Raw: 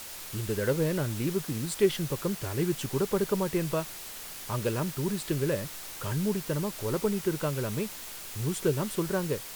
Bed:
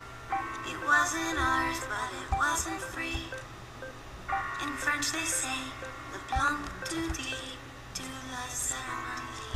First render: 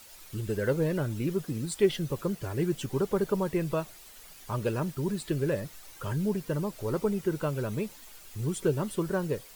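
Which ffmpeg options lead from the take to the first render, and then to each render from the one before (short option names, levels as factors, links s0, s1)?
-af "afftdn=nr=11:nf=-42"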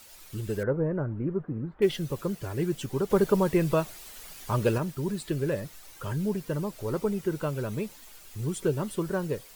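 -filter_complex "[0:a]asettb=1/sr,asplit=3[s0][s1][s2];[s0]atrim=end=0.634[s3];[s1]atrim=start=0.63:end=1.82,asetpts=PTS-STARTPTS,afade=t=in:d=0.004:c=qsin,afade=t=out:st=1.186:d=0.004:c=qsin,lowpass=f=1500:w=0.5412,lowpass=f=1500:w=1.3066[s4];[s2]atrim=start=1.816[s5];[s3][s4]acrossfade=d=0.004:c1=hsin:c2=qsin[s6];[s6][s5]acrossfade=d=0.004:c1=qsin:c2=hsin,asplit=3[s7][s8][s9];[s7]atrim=end=3.102[s10];[s8]atrim=start=3.098:end=4.782,asetpts=PTS-STARTPTS,volume=1.78[s11];[s9]atrim=start=4.778[s12];[s10][s11]acrossfade=d=0.004:c1=hsin:c2=hsin[s13];[s13][s12]acrossfade=d=0.004:c1=hsin:c2=hsin"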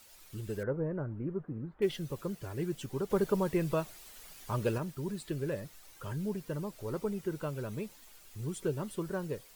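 -af "volume=0.473"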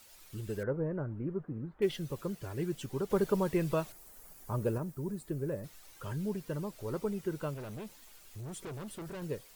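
-filter_complex "[0:a]asettb=1/sr,asplit=3[s0][s1][s2];[s0]atrim=end=3.924[s3];[s1]atrim=start=3.92:end=5.64,asetpts=PTS-STARTPTS,afade=t=in:d=0.004:c=qsin,afade=t=out:st=1.716:d=0.004:c=qsin,equalizer=f=3300:t=o:w=2:g=-13.5[s4];[s2]atrim=start=5.636[s5];[s3][s4]acrossfade=d=0.004:c1=hsin:c2=qsin[s6];[s6][s5]acrossfade=d=0.004:c1=qsin:c2=hsin,asettb=1/sr,asplit=3[s7][s8][s9];[s7]atrim=end=7.544[s10];[s8]atrim=start=7.54:end=9.22,asetpts=PTS-STARTPTS,afade=t=in:d=0.004:c=qsin,afade=t=out:st=1.676:d=0.004:c=qsin,asoftclip=type=hard:threshold=0.01[s11];[s9]atrim=start=9.216[s12];[s10][s11]acrossfade=d=0.004:c1=hsin:c2=qsin[s13];[s13][s12]acrossfade=d=0.004:c1=qsin:c2=hsin"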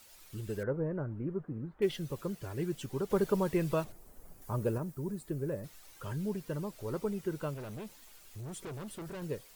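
-filter_complex "[0:a]asettb=1/sr,asplit=3[s0][s1][s2];[s0]atrim=end=3.844[s3];[s1]atrim=start=3.84:end=4.42,asetpts=PTS-STARTPTS,afade=t=in:d=0.004:c=qsin,afade=t=out:st=0.576:d=0.004:c=qsin,tiltshelf=f=830:g=7.5[s4];[s2]atrim=start=4.416[s5];[s3][s4]acrossfade=d=0.004:c1=hsin:c2=qsin[s6];[s6][s5]acrossfade=d=0.004:c1=qsin:c2=hsin"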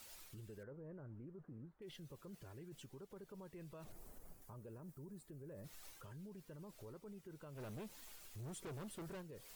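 -af "areverse,acompressor=threshold=0.00631:ratio=6,areverse,alimiter=level_in=12.6:limit=0.0631:level=0:latency=1:release=132,volume=0.0794"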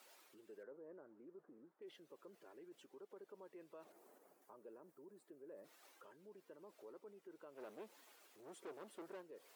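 -af "highpass=f=310:w=0.5412,highpass=f=310:w=1.3066,highshelf=f=2700:g=-11.5"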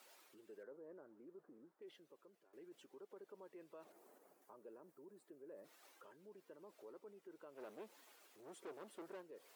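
-filter_complex "[0:a]asplit=2[s0][s1];[s0]atrim=end=2.53,asetpts=PTS-STARTPTS,afade=t=out:st=1.73:d=0.8:silence=0.16788[s2];[s1]atrim=start=2.53,asetpts=PTS-STARTPTS,afade=t=in:d=0.004:c=hsin:silence=0.16788[s3];[s2][s3]concat=n=2:v=0:a=1"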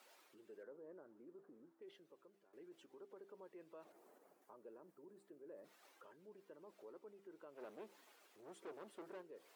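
-af "highshelf=f=5400:g=-5.5,bandreject=f=66.04:t=h:w=4,bandreject=f=132.08:t=h:w=4,bandreject=f=198.12:t=h:w=4,bandreject=f=264.16:t=h:w=4,bandreject=f=330.2:t=h:w=4,bandreject=f=396.24:t=h:w=4"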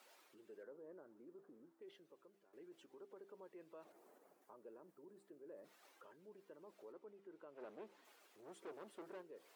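-filter_complex "[0:a]asettb=1/sr,asplit=3[s0][s1][s2];[s0]atrim=end=6.924[s3];[s1]atrim=start=6.92:end=8.05,asetpts=PTS-STARTPTS,afade=t=in:d=0.004:c=qsin,afade=t=out:st=1.126:d=0.004:c=qsin,highshelf=f=5400:g=-10.5[s4];[s2]atrim=start=8.046[s5];[s3][s4]acrossfade=d=0.004:c1=hsin:c2=qsin[s6];[s6][s5]acrossfade=d=0.004:c1=qsin:c2=hsin"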